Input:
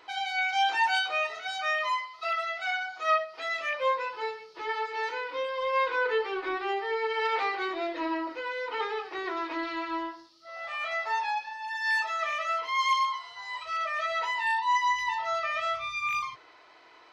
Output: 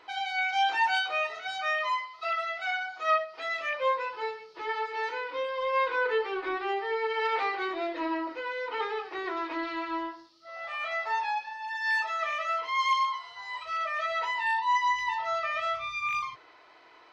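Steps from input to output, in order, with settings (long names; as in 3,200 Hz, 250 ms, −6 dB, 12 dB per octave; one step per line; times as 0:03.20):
high-shelf EQ 6,600 Hz −8 dB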